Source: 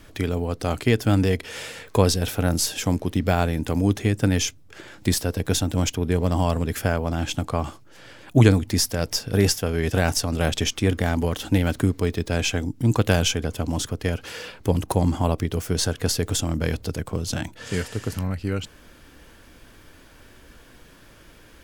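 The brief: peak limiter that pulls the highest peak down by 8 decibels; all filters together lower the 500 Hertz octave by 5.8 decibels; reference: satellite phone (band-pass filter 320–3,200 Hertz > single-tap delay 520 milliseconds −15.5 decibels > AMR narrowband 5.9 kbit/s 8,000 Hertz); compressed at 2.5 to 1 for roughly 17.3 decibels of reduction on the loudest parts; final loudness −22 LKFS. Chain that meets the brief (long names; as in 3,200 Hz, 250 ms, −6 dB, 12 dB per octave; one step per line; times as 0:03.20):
parametric band 500 Hz −6 dB
downward compressor 2.5 to 1, threshold −38 dBFS
brickwall limiter −24.5 dBFS
band-pass filter 320–3,200 Hz
single-tap delay 520 ms −15.5 dB
level +24.5 dB
AMR narrowband 5.9 kbit/s 8,000 Hz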